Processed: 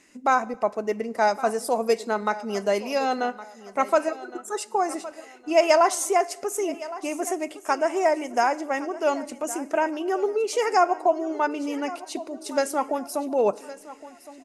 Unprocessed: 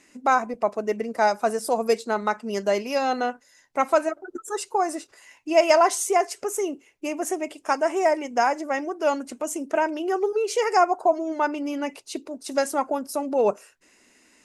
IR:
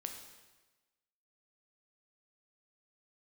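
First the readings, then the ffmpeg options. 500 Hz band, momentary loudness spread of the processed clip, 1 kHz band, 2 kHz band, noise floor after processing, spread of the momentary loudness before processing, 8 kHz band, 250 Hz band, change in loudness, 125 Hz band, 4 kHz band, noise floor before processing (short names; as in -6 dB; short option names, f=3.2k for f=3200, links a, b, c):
-0.5 dB, 12 LU, -0.5 dB, -0.5 dB, -48 dBFS, 10 LU, -0.5 dB, -0.5 dB, -0.5 dB, n/a, -0.5 dB, -60 dBFS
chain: -filter_complex "[0:a]aecho=1:1:1114|2228|3342:0.15|0.0494|0.0163,asplit=2[a][b];[1:a]atrim=start_sample=2205,asetrate=42777,aresample=44100[c];[b][c]afir=irnorm=-1:irlink=0,volume=-12.5dB[d];[a][d]amix=inputs=2:normalize=0,volume=-2dB"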